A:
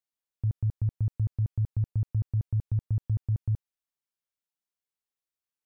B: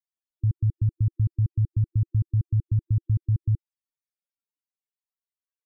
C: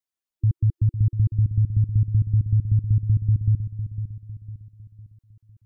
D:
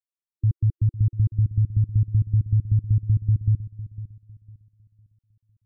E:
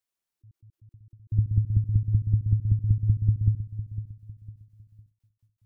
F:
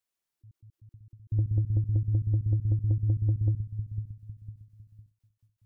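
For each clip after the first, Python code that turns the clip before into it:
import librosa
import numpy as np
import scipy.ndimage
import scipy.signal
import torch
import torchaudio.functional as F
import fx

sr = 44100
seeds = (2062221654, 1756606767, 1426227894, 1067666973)

y1 = fx.spec_topn(x, sr, count=16)
y1 = F.gain(torch.from_numpy(y1), 4.5).numpy()
y2 = fx.echo_feedback(y1, sr, ms=504, feedback_pct=43, wet_db=-10)
y2 = F.gain(torch.from_numpy(y2), 3.0).numpy()
y3 = fx.upward_expand(y2, sr, threshold_db=-40.0, expansion=1.5)
y4 = fx.end_taper(y3, sr, db_per_s=200.0)
y4 = F.gain(torch.from_numpy(y4), 7.0).numpy()
y5 = 10.0 ** (-19.0 / 20.0) * np.tanh(y4 / 10.0 ** (-19.0 / 20.0))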